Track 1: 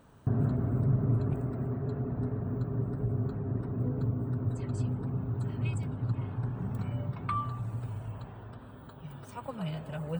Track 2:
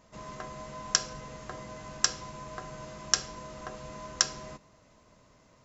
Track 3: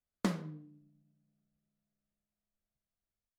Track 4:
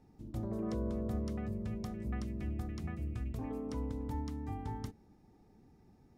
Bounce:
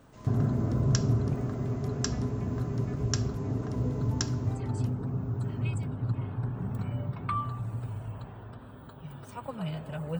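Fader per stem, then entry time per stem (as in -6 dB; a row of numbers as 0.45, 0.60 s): +1.0, -8.5, -19.5, -2.5 dB; 0.00, 0.00, 0.00, 0.00 s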